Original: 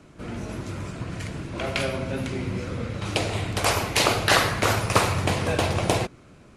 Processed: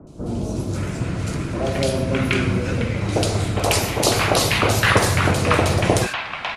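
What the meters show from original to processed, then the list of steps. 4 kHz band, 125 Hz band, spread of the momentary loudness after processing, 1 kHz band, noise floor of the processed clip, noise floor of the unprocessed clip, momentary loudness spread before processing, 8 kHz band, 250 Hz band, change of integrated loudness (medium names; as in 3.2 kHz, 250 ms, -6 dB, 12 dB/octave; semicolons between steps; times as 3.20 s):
+3.5 dB, +7.0 dB, 9 LU, +3.5 dB, -31 dBFS, -51 dBFS, 14 LU, +5.5 dB, +7.0 dB, +5.0 dB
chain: in parallel at -3 dB: gain riding within 4 dB; on the sum: three bands offset in time lows, highs, mids 70/550 ms, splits 960/3500 Hz; trim +2 dB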